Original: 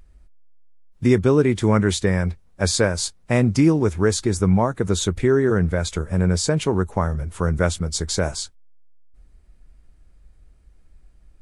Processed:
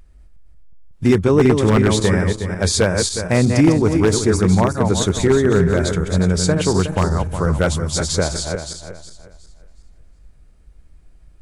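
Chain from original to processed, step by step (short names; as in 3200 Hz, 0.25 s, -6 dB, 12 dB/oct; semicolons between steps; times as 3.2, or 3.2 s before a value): regenerating reverse delay 0.182 s, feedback 54%, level -5 dB; wavefolder -7.5 dBFS; gain +2.5 dB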